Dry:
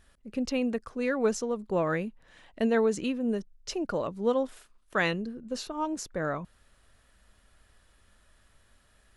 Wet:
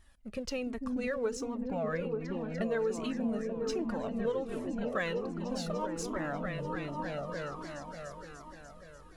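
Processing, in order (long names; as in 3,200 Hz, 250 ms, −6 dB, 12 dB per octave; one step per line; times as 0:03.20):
in parallel at −4 dB: dead-zone distortion −47 dBFS
0:01.45–0:02.62: on the sum: high-shelf EQ 5,200 Hz −8 dB
echo whose low-pass opens from repeat to repeat 295 ms, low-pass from 200 Hz, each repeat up 1 octave, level 0 dB
downward compressor 4 to 1, threshold −28 dBFS, peak gain reduction 11 dB
on a send at −10.5 dB: first difference + convolution reverb RT60 0.50 s, pre-delay 4 ms
on the sum: flanger whose copies keep moving one way falling 1.3 Hz
level +1.5 dB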